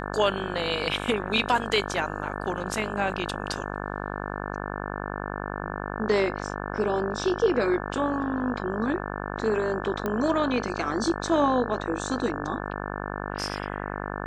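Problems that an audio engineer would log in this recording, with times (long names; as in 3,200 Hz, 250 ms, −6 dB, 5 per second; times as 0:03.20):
mains buzz 50 Hz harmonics 35 −33 dBFS
0:10.06: click −15 dBFS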